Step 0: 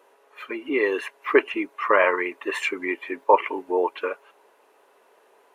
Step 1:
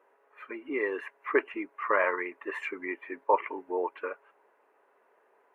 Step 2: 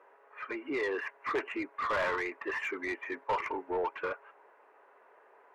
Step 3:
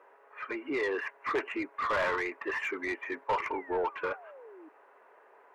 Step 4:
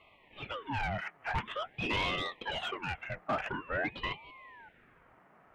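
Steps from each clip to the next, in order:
resonant high shelf 2700 Hz -11 dB, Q 1.5; gain -8.5 dB
soft clip -25 dBFS, distortion -8 dB; overdrive pedal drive 14 dB, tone 1900 Hz, clips at -25 dBFS
painted sound fall, 3.53–4.69, 300–2400 Hz -52 dBFS; gain +1.5 dB
ring modulator with a swept carrier 930 Hz, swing 75%, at 0.47 Hz

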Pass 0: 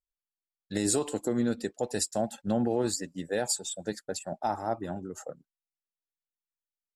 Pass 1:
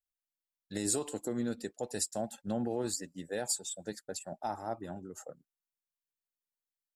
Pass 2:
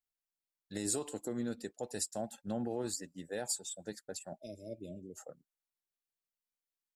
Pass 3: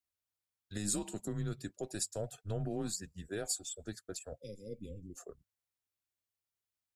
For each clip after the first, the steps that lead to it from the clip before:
high shelf 8000 Hz +7.5 dB; gain -6.5 dB
spectral delete 4.41–5.17, 660–2100 Hz; gain -3 dB
frequency shift -100 Hz

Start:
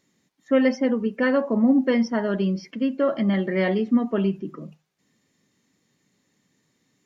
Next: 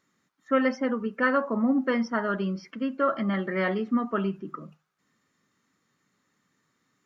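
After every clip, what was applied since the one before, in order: bell 1300 Hz +14.5 dB 0.72 oct; gain -6 dB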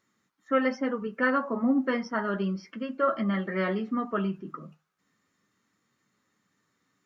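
flange 0.33 Hz, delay 8.8 ms, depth 3.1 ms, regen -43%; gain +2.5 dB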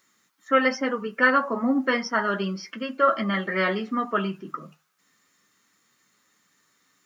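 tilt +2.5 dB/oct; gain +6 dB

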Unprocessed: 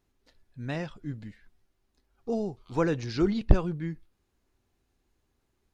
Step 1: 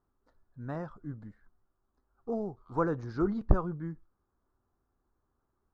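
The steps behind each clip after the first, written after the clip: resonant high shelf 1800 Hz -12.5 dB, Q 3; gain -4.5 dB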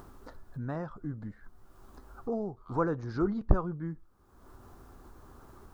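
upward compressor, threshold -30 dBFS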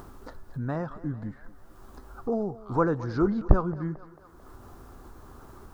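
thinning echo 0.222 s, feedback 63%, high-pass 310 Hz, level -16.5 dB; gain +5 dB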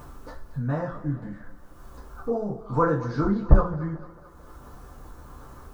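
two-slope reverb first 0.27 s, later 2 s, from -27 dB, DRR -6.5 dB; gain -4.5 dB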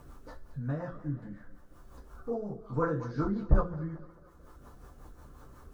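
rotary speaker horn 5.5 Hz; gain -5.5 dB

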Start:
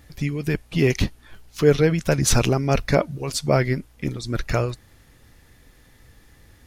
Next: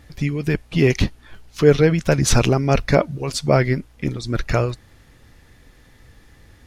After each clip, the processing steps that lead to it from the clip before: high shelf 9600 Hz -10 dB; gain +3 dB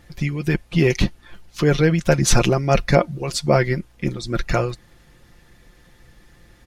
harmonic-percussive split harmonic -3 dB; comb 5.7 ms, depth 48%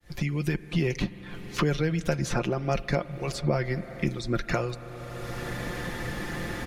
opening faded in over 1.34 s; spring tank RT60 2.3 s, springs 41/46 ms, chirp 40 ms, DRR 16.5 dB; three-band squash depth 100%; gain -8.5 dB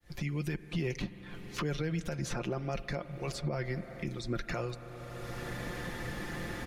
limiter -19 dBFS, peak gain reduction 8.5 dB; gain -5.5 dB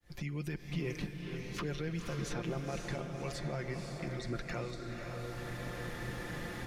diffused feedback echo 0.531 s, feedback 45%, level -4 dB; gain -4 dB

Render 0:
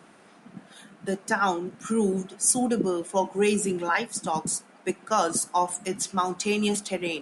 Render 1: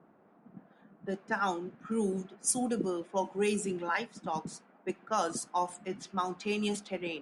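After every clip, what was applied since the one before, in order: low-pass opened by the level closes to 910 Hz, open at -19 dBFS; gain -7 dB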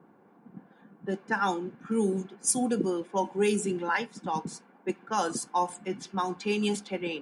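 notch comb 640 Hz; gain +4.5 dB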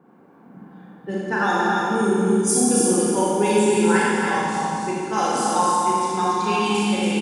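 echo 0.28 s -4 dB; Schroeder reverb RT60 2.2 s, combs from 29 ms, DRR -6 dB; gain +1.5 dB

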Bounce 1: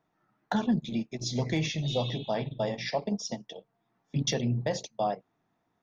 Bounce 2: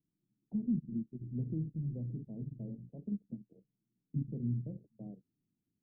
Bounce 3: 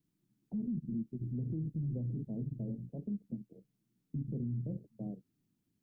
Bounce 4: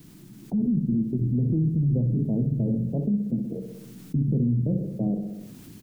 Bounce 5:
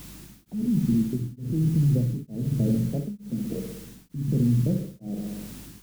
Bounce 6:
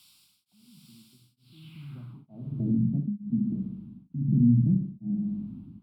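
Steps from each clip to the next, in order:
inverse Chebyshev low-pass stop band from 1800 Hz, stop band 80 dB; gain -5.5 dB
limiter -36 dBFS, peak gain reduction 12 dB; gain +5.5 dB
AGC gain up to 8 dB; feedback echo 63 ms, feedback 52%, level -11.5 dB; fast leveller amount 50%; gain +3.5 dB
in parallel at -11 dB: requantised 6-bit, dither triangular; on the sum: hum 50 Hz, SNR 24 dB; beating tremolo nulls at 1.1 Hz
bell 84 Hz +10.5 dB 1.8 oct; band-pass sweep 5800 Hz -> 230 Hz, 1.35–2.86; fixed phaser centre 1800 Hz, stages 6; gain +3.5 dB

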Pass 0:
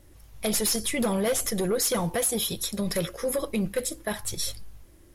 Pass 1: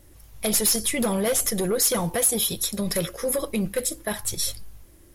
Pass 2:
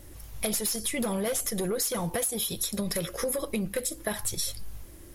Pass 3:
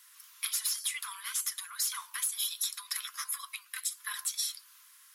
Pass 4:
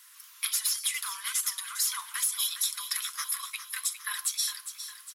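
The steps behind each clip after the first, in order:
high shelf 8400 Hz +6.5 dB; gain +1.5 dB
compressor 6:1, threshold -32 dBFS, peak gain reduction 14.5 dB; gain +4.5 dB
rippled Chebyshev high-pass 1000 Hz, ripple 3 dB; hard clip -21 dBFS, distortion -37 dB
feedback echo 0.407 s, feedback 52%, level -11 dB; gain +3.5 dB

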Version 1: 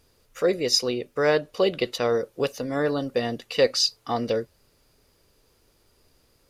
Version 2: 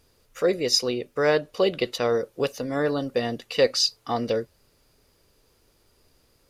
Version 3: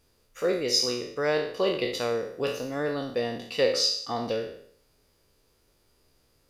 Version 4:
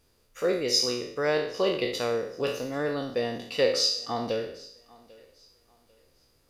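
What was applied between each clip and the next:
nothing audible
spectral trails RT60 0.63 s; gain -5.5 dB
thinning echo 0.795 s, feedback 30%, high-pass 170 Hz, level -23 dB

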